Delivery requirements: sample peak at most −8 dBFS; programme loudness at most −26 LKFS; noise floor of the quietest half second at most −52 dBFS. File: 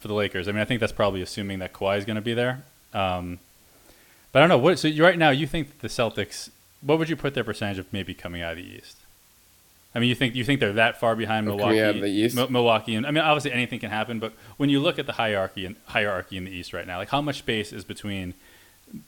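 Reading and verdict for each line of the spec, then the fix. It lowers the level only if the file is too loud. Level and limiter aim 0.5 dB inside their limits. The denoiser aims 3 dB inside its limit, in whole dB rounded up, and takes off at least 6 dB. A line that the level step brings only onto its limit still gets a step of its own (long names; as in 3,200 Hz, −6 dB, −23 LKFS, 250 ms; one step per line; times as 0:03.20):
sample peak −4.0 dBFS: out of spec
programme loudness −24.5 LKFS: out of spec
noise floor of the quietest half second −57 dBFS: in spec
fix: level −2 dB
brickwall limiter −8.5 dBFS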